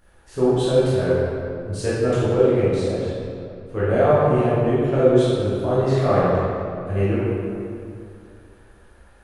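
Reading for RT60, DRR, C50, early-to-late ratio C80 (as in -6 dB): 2.5 s, -11.0 dB, -4.5 dB, -1.5 dB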